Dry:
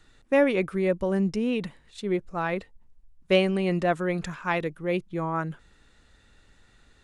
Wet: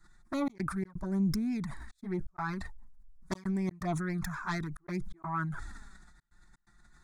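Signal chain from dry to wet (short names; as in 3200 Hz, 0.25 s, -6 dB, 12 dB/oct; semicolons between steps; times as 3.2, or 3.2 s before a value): self-modulated delay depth 0.2 ms; step gate "xxxx.xx.xxxx" 126 bpm -60 dB; envelope flanger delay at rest 6 ms, full sweep at -21 dBFS; fixed phaser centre 1200 Hz, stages 4; sustainer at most 35 dB/s; gain -1.5 dB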